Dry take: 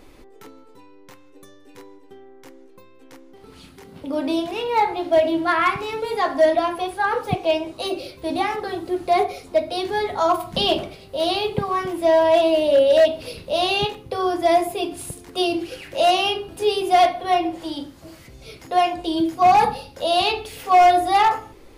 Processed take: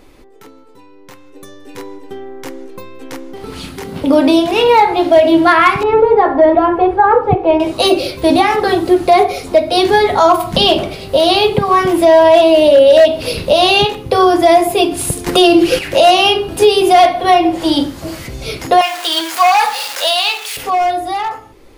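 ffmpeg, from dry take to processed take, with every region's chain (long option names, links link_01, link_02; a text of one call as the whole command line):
ffmpeg -i in.wav -filter_complex "[0:a]asettb=1/sr,asplit=3[link_01][link_02][link_03];[link_01]atrim=end=5.834[link_04];[link_02]atrim=start=5.83:end=7.6,asetpts=PTS-STARTPTS,afade=type=in:duration=0.004:curve=qsin,afade=type=out:start_time=1.766:duration=0.004:curve=qsin,lowpass=1200,aecho=1:1:2.3:0.48,atrim=end_sample=78057[link_05];[link_03]atrim=start=7.596[link_06];[link_04][link_05]acrossfade=duration=0.004:curve1=hsin:curve2=qsin[link_07];[link_07][link_06]acrossfade=duration=0.004:curve1=qsin:curve2=hsin,asettb=1/sr,asplit=3[link_08][link_09][link_10];[link_08]atrim=end=15.264[link_11];[link_09]atrim=start=15.26:end=15.79,asetpts=PTS-STARTPTS,afade=type=in:duration=0.004:curve=qsin,afade=type=out:start_time=0.526:duration=0.004:curve=qsin,aecho=1:1:5.8:0.43,atrim=end_sample=23373,acontrast=81[link_12];[link_10]atrim=start=15.786[link_13];[link_11][link_12]acrossfade=duration=0.004:curve1=hsin:curve2=qsin[link_14];[link_14][link_13]acrossfade=duration=0.004:curve1=qsin:curve2=hsin,asettb=1/sr,asplit=3[link_15][link_16][link_17];[link_15]atrim=end=18.814[link_18];[link_16]atrim=start=18.81:end=20.57,asetpts=PTS-STARTPTS,afade=type=in:duration=0.004:curve=qsin,afade=type=out:start_time=1.756:duration=0.004:curve=qsin,aeval=exprs='val(0)+0.5*0.0316*sgn(val(0))':channel_layout=same,highpass=1200[link_19];[link_17]atrim=start=20.566[link_20];[link_18][link_19]acrossfade=duration=0.004:curve1=hsin:curve2=qsin[link_21];[link_21][link_20]acrossfade=duration=0.004:curve1=qsin:curve2=hsin,alimiter=limit=-18dB:level=0:latency=1:release=399,dynaudnorm=framelen=160:gausssize=21:maxgain=14dB,volume=3.5dB" out.wav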